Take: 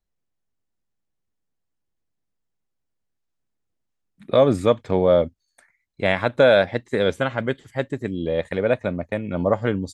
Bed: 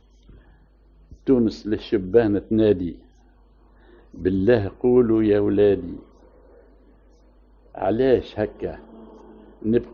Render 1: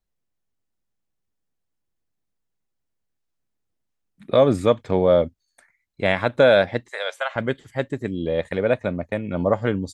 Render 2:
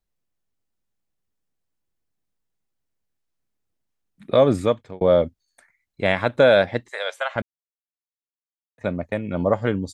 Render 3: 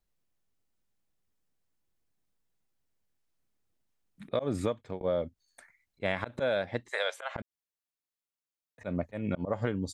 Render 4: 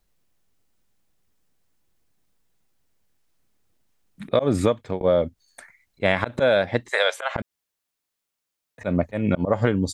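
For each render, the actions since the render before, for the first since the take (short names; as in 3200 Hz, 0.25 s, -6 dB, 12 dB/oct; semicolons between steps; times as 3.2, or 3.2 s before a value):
6.9–7.36 Chebyshev high-pass 610 Hz, order 4
4.59–5.01 fade out; 7.42–8.78 mute
auto swell 0.172 s; compressor 12:1, threshold -26 dBFS, peak gain reduction 14.5 dB
gain +10.5 dB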